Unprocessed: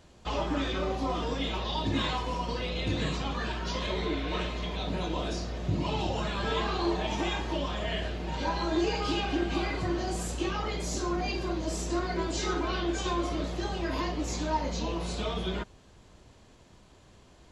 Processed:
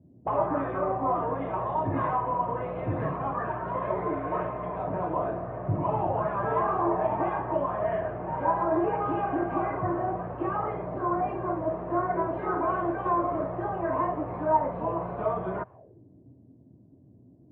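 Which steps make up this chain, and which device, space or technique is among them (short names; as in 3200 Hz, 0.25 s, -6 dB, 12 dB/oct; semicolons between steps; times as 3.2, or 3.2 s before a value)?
envelope filter bass rig (envelope low-pass 210–1200 Hz up, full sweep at -34.5 dBFS; speaker cabinet 88–2300 Hz, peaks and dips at 120 Hz +7 dB, 220 Hz -6 dB, 650 Hz +8 dB, 1300 Hz -8 dB)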